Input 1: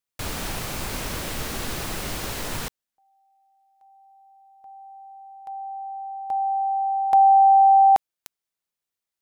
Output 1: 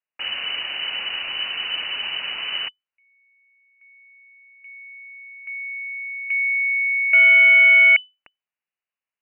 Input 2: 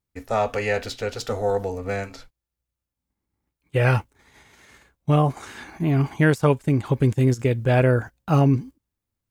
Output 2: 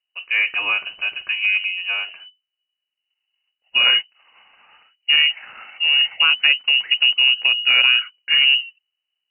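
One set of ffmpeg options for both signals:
-af "highshelf=f=2200:g=-11.5,aeval=exprs='clip(val(0),-1,0.178)':c=same,lowpass=f=2600:t=q:w=0.5098,lowpass=f=2600:t=q:w=0.6013,lowpass=f=2600:t=q:w=0.9,lowpass=f=2600:t=q:w=2.563,afreqshift=-3000,volume=1.58"

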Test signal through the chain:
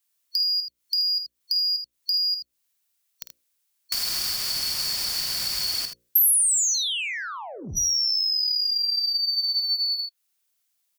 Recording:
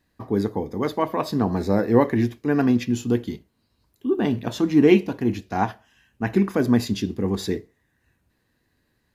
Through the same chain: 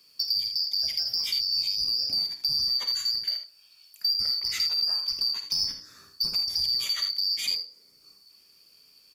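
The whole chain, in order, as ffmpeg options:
-filter_complex "[0:a]afftfilt=real='real(if(lt(b,272),68*(eq(floor(b/68),0)*1+eq(floor(b/68),1)*2+eq(floor(b/68),2)*3+eq(floor(b/68),3)*0)+mod(b,68),b),0)':imag='imag(if(lt(b,272),68*(eq(floor(b/68),0)*1+eq(floor(b/68),1)*2+eq(floor(b/68),2)*3+eq(floor(b/68),3)*0)+mod(b,68),b),0)':win_size=2048:overlap=0.75,highshelf=f=5000:g=-8.5,bandreject=f=60:t=h:w=6,bandreject=f=120:t=h:w=6,bandreject=f=180:t=h:w=6,bandreject=f=240:t=h:w=6,bandreject=f=300:t=h:w=6,bandreject=f=360:t=h:w=6,bandreject=f=420:t=h:w=6,bandreject=f=480:t=h:w=6,bandreject=f=540:t=h:w=6,asplit=2[s0][s1];[s1]acompressor=threshold=0.0282:ratio=8,volume=1[s2];[s0][s2]amix=inputs=2:normalize=0,alimiter=limit=0.141:level=0:latency=1:release=21,acrossover=split=180[s3][s4];[s4]acompressor=threshold=0.0224:ratio=8[s5];[s3][s5]amix=inputs=2:normalize=0,asoftclip=type=tanh:threshold=0.0631,crystalizer=i=9:c=0,asplit=2[s6][s7];[s7]aecho=0:1:50|80:0.316|0.335[s8];[s6][s8]amix=inputs=2:normalize=0,adynamicequalizer=threshold=0.0398:dfrequency=6400:dqfactor=0.7:tfrequency=6400:tqfactor=0.7:attack=5:release=100:ratio=0.375:range=1.5:mode=cutabove:tftype=highshelf,volume=0.473"

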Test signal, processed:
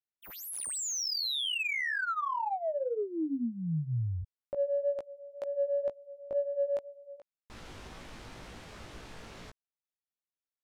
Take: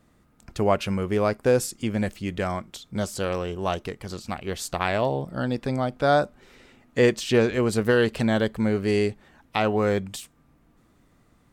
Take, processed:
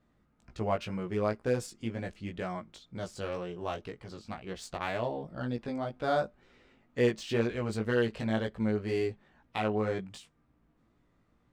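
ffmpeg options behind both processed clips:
-af "flanger=delay=16.5:depth=2.6:speed=2,adynamicsmooth=sensitivity=6:basefreq=5500,volume=0.501"

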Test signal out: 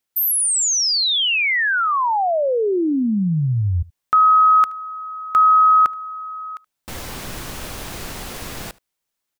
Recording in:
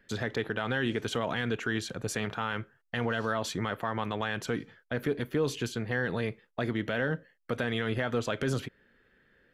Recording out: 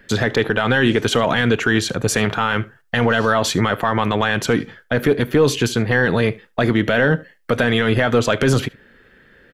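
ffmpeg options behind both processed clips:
-af "aecho=1:1:75:0.0668,apsyclip=12.6,volume=0.447"

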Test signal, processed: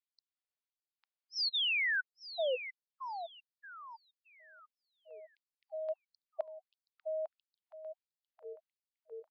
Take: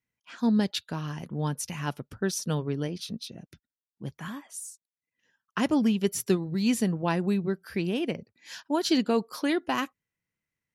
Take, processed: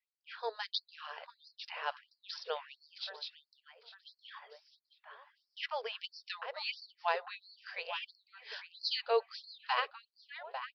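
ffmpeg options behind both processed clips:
-filter_complex "[0:a]aresample=11025,aresample=44100,asplit=2[s0][s1];[s1]adelay=850,lowpass=f=2400:p=1,volume=0.376,asplit=2[s2][s3];[s3]adelay=850,lowpass=f=2400:p=1,volume=0.43,asplit=2[s4][s5];[s5]adelay=850,lowpass=f=2400:p=1,volume=0.43,asplit=2[s6][s7];[s7]adelay=850,lowpass=f=2400:p=1,volume=0.43,asplit=2[s8][s9];[s9]adelay=850,lowpass=f=2400:p=1,volume=0.43[s10];[s0][s2][s4][s6][s8][s10]amix=inputs=6:normalize=0,afftfilt=real='re*gte(b*sr/1024,400*pow(4200/400,0.5+0.5*sin(2*PI*1.5*pts/sr)))':imag='im*gte(b*sr/1024,400*pow(4200/400,0.5+0.5*sin(2*PI*1.5*pts/sr)))':win_size=1024:overlap=0.75,volume=0.794"

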